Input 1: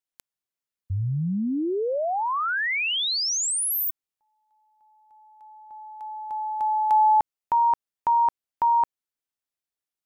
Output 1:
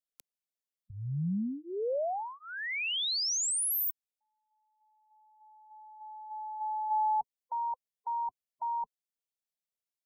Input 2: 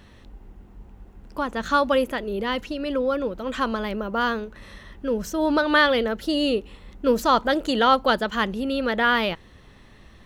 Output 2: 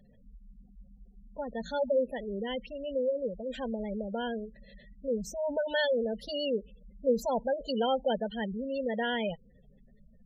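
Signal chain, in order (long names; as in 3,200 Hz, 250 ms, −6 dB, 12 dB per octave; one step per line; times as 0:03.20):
phaser with its sweep stopped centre 320 Hz, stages 6
gate on every frequency bin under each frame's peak −15 dB strong
level −5 dB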